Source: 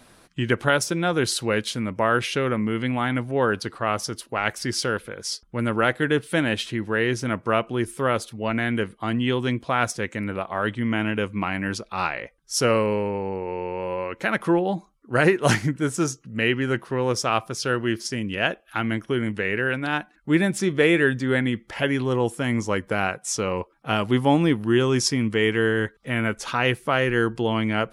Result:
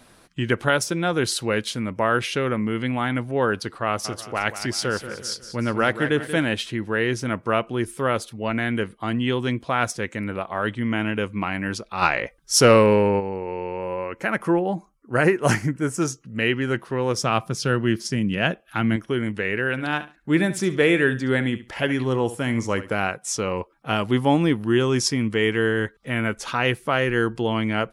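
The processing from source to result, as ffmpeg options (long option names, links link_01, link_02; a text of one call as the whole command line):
ffmpeg -i in.wav -filter_complex "[0:a]asplit=3[link_01][link_02][link_03];[link_01]afade=type=out:start_time=4.04:duration=0.02[link_04];[link_02]aecho=1:1:183|366|549|732:0.266|0.114|0.0492|0.0212,afade=type=in:start_time=4.04:duration=0.02,afade=type=out:start_time=6.45:duration=0.02[link_05];[link_03]afade=type=in:start_time=6.45:duration=0.02[link_06];[link_04][link_05][link_06]amix=inputs=3:normalize=0,asplit=3[link_07][link_08][link_09];[link_07]afade=type=out:start_time=12.01:duration=0.02[link_10];[link_08]acontrast=85,afade=type=in:start_time=12.01:duration=0.02,afade=type=out:start_time=13.19:duration=0.02[link_11];[link_09]afade=type=in:start_time=13.19:duration=0.02[link_12];[link_10][link_11][link_12]amix=inputs=3:normalize=0,asettb=1/sr,asplit=3[link_13][link_14][link_15];[link_13]atrim=end=13.774[link_16];[link_14]atrim=start=13.77:end=16.02,asetpts=PTS-STARTPTS,afade=type=in:duration=0.004:curve=qsin,afade=type=out:start_time=2.246:duration=0.004:curve=qsin,equalizer=frequency=3700:width=3.1:gain=-12[link_17];[link_15]atrim=start=16.016[link_18];[link_16][link_17]acrossfade=duration=0.004:curve1=hsin:curve2=qsin[link_19];[link_19][link_18]acrossfade=duration=0.004:curve1=qsin:curve2=hsin,asettb=1/sr,asplit=3[link_20][link_21][link_22];[link_20]atrim=end=17.184[link_23];[link_21]atrim=start=17.18:end=18.96,asetpts=PTS-STARTPTS,afade=type=in:duration=0.004:curve=qsin,afade=type=out:start_time=1.776:duration=0.004:curve=qsin,equalizer=frequency=160:width=1.4:gain=10.5[link_24];[link_22]atrim=start=18.956[link_25];[link_23][link_24]acrossfade=duration=0.004:curve1=hsin:curve2=qsin[link_26];[link_26][link_25]acrossfade=duration=0.004:curve1=qsin:curve2=hsin,asplit=3[link_27][link_28][link_29];[link_27]afade=type=out:start_time=19.76:duration=0.02[link_30];[link_28]aecho=1:1:69|138:0.2|0.0399,afade=type=in:start_time=19.76:duration=0.02,afade=type=out:start_time=22.96:duration=0.02[link_31];[link_29]afade=type=in:start_time=22.96:duration=0.02[link_32];[link_30][link_31][link_32]amix=inputs=3:normalize=0" out.wav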